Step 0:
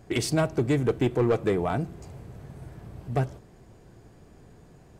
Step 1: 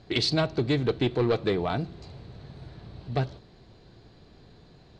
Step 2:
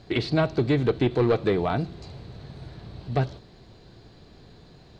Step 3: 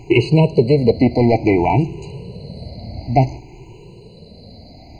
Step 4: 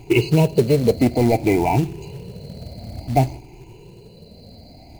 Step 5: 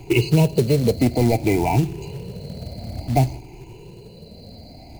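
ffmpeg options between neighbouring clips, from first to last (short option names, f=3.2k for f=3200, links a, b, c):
-af "lowpass=f=4.1k:t=q:w=6.5,volume=-1.5dB"
-filter_complex "[0:a]acrossover=split=2600[a][b];[b]acompressor=threshold=-46dB:ratio=4:attack=1:release=60[c];[a][c]amix=inputs=2:normalize=0,highshelf=f=7.3k:g=5,volume=3dB"
-af "afftfilt=real='re*pow(10,14/40*sin(2*PI*(0.7*log(max(b,1)*sr/1024/100)/log(2)-(0.56)*(pts-256)/sr)))':imag='im*pow(10,14/40*sin(2*PI*(0.7*log(max(b,1)*sr/1024/100)/log(2)-(0.56)*(pts-256)/sr)))':win_size=1024:overlap=0.75,afftfilt=real='re*eq(mod(floor(b*sr/1024/1000),2),0)':imag='im*eq(mod(floor(b*sr/1024/1000),2),0)':win_size=1024:overlap=0.75,volume=8.5dB"
-af "acrusher=bits=5:mode=log:mix=0:aa=0.000001,volume=-3dB"
-filter_complex "[0:a]acrossover=split=170|3000[a][b][c];[b]acompressor=threshold=-27dB:ratio=1.5[d];[a][d][c]amix=inputs=3:normalize=0,volume=2dB"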